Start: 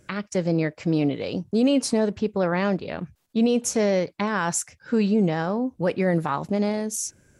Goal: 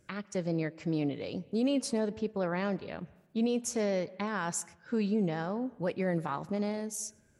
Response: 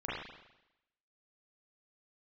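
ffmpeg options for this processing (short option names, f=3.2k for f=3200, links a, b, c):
-filter_complex "[0:a]asplit=2[a][b];[1:a]atrim=start_sample=2205,adelay=116[c];[b][c]afir=irnorm=-1:irlink=0,volume=-26.5dB[d];[a][d]amix=inputs=2:normalize=0,volume=-9dB"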